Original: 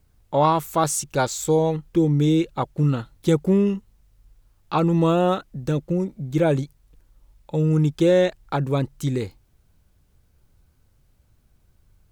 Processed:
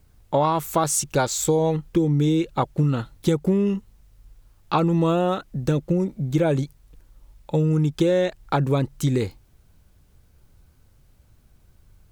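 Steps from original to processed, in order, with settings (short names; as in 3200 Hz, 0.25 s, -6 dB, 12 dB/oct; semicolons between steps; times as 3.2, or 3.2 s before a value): compressor, threshold -21 dBFS, peak gain reduction 8 dB; gain +4.5 dB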